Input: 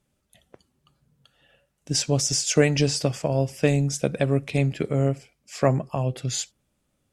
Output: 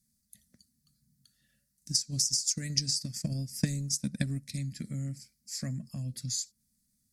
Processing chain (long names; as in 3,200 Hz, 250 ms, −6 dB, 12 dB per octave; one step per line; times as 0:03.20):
drawn EQ curve 150 Hz 0 dB, 220 Hz +7 dB, 410 Hz −23 dB, 590 Hz −17 dB, 890 Hz −27 dB, 1,900 Hz −2 dB, 2,900 Hz −15 dB, 4,500 Hz +11 dB, 7,700 Hz +10 dB, 11,000 Hz +14 dB
downward compressor 2.5 to 1, threshold −27 dBFS, peak gain reduction 11.5 dB
0:01.91–0:04.54: transient designer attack +11 dB, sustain −5 dB
level −7 dB